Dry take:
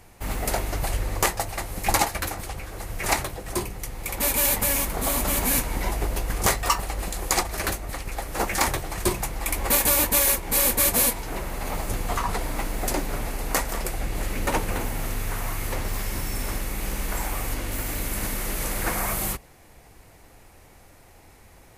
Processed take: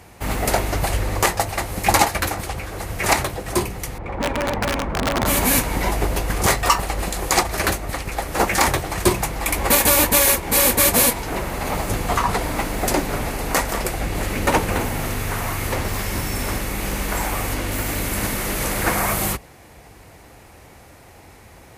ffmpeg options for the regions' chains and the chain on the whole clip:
ffmpeg -i in.wav -filter_complex "[0:a]asettb=1/sr,asplit=3[link_01][link_02][link_03];[link_01]atrim=end=3.984[link_04];[link_02]atrim=start=3.98:end=5.26,asetpts=PTS-STARTPTS,afade=type=in:duration=0.004:curve=qsin,afade=type=out:start_time=1.276:duration=0.004:curve=qsin,lowpass=1300,aeval=exprs='(mod(10.6*val(0)+1,2)-1)/10.6':channel_layout=same[link_05];[link_03]atrim=start=5.256[link_06];[link_04][link_05]acrossfade=duration=0.004:curve1=hsin:curve2=qsin[link_07];[link_07][link_06]acrossfade=duration=0.004:curve1=qsin:curve2=hsin,highpass=52,highshelf=frequency=6700:gain=-4.5,alimiter=level_in=8.5dB:limit=-1dB:release=50:level=0:latency=1,volume=-1dB" out.wav

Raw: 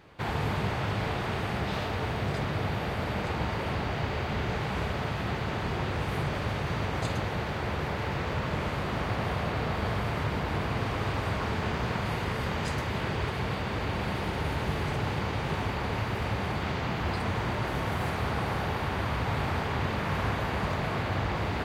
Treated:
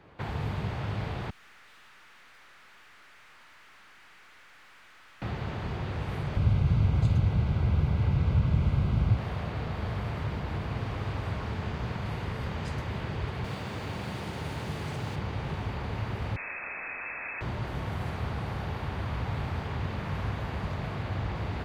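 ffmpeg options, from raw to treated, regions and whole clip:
ffmpeg -i in.wav -filter_complex "[0:a]asettb=1/sr,asplit=3[link_01][link_02][link_03];[link_01]atrim=end=1.304[link_04];[link_02]atrim=start=1.3:end=5.22,asetpts=PTS-STARTPTS,afade=type=in:duration=0.004:curve=qsin,afade=type=out:start_time=3.916:duration=0.004:curve=qsin,highpass=frequency=1300:width=0.5412,highpass=frequency=1300:width=1.3066,aeval=exprs='(tanh(398*val(0)+0.55)-tanh(0.55))/398':channel_layout=same[link_05];[link_03]atrim=start=5.216[link_06];[link_04][link_05]acrossfade=duration=0.004:curve1=hsin:curve2=qsin[link_07];[link_07][link_06]acrossfade=duration=0.004:curve1=qsin:curve2=hsin,asettb=1/sr,asplit=3[link_08][link_09][link_10];[link_08]atrim=end=6.364[link_11];[link_09]atrim=start=6.36:end=9.17,asetpts=PTS-STARTPTS,afade=type=in:duration=0.004:curve=qsin,afade=type=out:start_time=2.806:duration=0.004:curve=qsin,asuperstop=centerf=1800:order=8:qfactor=7.6,bass=frequency=250:gain=11,treble=frequency=4000:gain=-2[link_12];[link_10]atrim=start=9.166[link_13];[link_11][link_12]acrossfade=duration=0.004:curve1=hsin:curve2=qsin[link_14];[link_14][link_13]acrossfade=duration=0.004:curve1=qsin:curve2=hsin,asettb=1/sr,asplit=3[link_15][link_16][link_17];[link_15]atrim=end=13.444[link_18];[link_16]atrim=start=13.44:end=15.16,asetpts=PTS-STARTPTS,afade=type=in:duration=0.004:curve=qsin,afade=type=out:start_time=1.716:duration=0.004:curve=qsin,highpass=100,equalizer=frequency=8300:width=0.68:gain=8.5,acrusher=bits=7:mix=0:aa=0.5[link_19];[link_17]atrim=start=15.156[link_20];[link_18][link_19]acrossfade=duration=0.004:curve1=hsin:curve2=qsin[link_21];[link_21][link_20]acrossfade=duration=0.004:curve1=qsin:curve2=hsin,asettb=1/sr,asplit=3[link_22][link_23][link_24];[link_22]atrim=end=16.364[link_25];[link_23]atrim=start=16.36:end=17.41,asetpts=PTS-STARTPTS,afade=type=in:duration=0.004:curve=qsin,afade=type=out:start_time=1.046:duration=0.004:curve=qsin,highpass=frequency=130:poles=1,lowpass=frequency=2300:width_type=q:width=0.5098,lowpass=frequency=2300:width_type=q:width=0.6013,lowpass=frequency=2300:width_type=q:width=0.9,lowpass=frequency=2300:width_type=q:width=2.563,afreqshift=-2700[link_26];[link_24]atrim=start=17.406[link_27];[link_25][link_26]acrossfade=duration=0.004:curve1=hsin:curve2=qsin[link_28];[link_28][link_27]acrossfade=duration=0.004:curve1=qsin:curve2=hsin,highshelf=frequency=3800:gain=-11,acrossover=split=170|3000[link_29][link_30][link_31];[link_30]acompressor=threshold=-37dB:ratio=6[link_32];[link_29][link_32][link_31]amix=inputs=3:normalize=0" out.wav

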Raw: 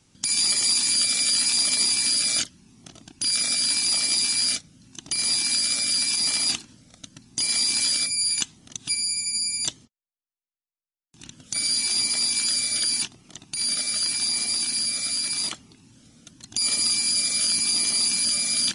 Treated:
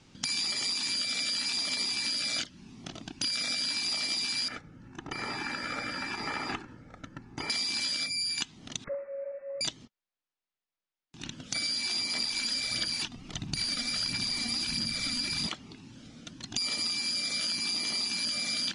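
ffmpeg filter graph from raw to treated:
ffmpeg -i in.wav -filter_complex "[0:a]asettb=1/sr,asplit=3[link_01][link_02][link_03];[link_01]atrim=end=4.484[link_04];[link_02]atrim=start=4.48:end=7.5,asetpts=PTS-STARTPTS,afade=type=in:duration=0.004:curve=qsin,afade=type=out:start_time=3.016:duration=0.004:curve=qsin,highshelf=frequency=2400:width_type=q:width=1.5:gain=-14,aecho=1:1:2.3:0.4,atrim=end_sample=133182,acrossover=split=3900[link_05][link_06];[link_06]acompressor=threshold=-43dB:ratio=4:attack=1:release=60[link_07];[link_05][link_07]amix=inputs=2:normalize=0[link_08];[link_03]atrim=start=7.496[link_09];[link_04][link_08]acrossfade=duration=0.004:curve1=hsin:curve2=qsin[link_10];[link_10][link_09]acrossfade=duration=0.004:curve1=qsin:curve2=hsin,asettb=1/sr,asplit=3[link_11][link_12][link_13];[link_11]atrim=end=8.844[link_14];[link_12]atrim=start=8.84:end=9.61,asetpts=PTS-STARTPTS,afade=type=in:duration=0.004:curve=qsin,afade=type=out:start_time=0.766:duration=0.004:curve=qsin,highpass=frequency=670:width=0.5412,highpass=frequency=670:width=1.3066,lowpass=frequency=2500:width_type=q:width=0.5098,lowpass=frequency=2500:width_type=q:width=0.6013,lowpass=frequency=2500:width_type=q:width=0.9,lowpass=frequency=2500:width_type=q:width=2.563,afreqshift=-2900[link_15];[link_13]atrim=start=9.606[link_16];[link_14][link_15]acrossfade=duration=0.004:curve1=hsin:curve2=qsin[link_17];[link_17][link_16]acrossfade=duration=0.004:curve1=qsin:curve2=hsin,asettb=1/sr,asplit=3[link_18][link_19][link_20];[link_18]atrim=end=12.164[link_21];[link_19]atrim=start=12.16:end=15.47,asetpts=PTS-STARTPTS,afade=type=in:duration=0.004:curve=qsin,afade=type=out:start_time=3.306:duration=0.004:curve=qsin,asubboost=boost=6.5:cutoff=210,aphaser=in_gain=1:out_gain=1:delay=4.2:decay=0.48:speed=1.5:type=sinusoidal,acrusher=bits=5:mode=log:mix=0:aa=0.000001[link_22];[link_20]atrim=start=15.466[link_23];[link_21][link_22]acrossfade=duration=0.004:curve1=hsin:curve2=qsin[link_24];[link_24][link_23]acrossfade=duration=0.004:curve1=qsin:curve2=hsin,lowpass=4400,equalizer=frequency=82:width=0.97:gain=-4,acompressor=threshold=-35dB:ratio=5,volume=5.5dB" out.wav

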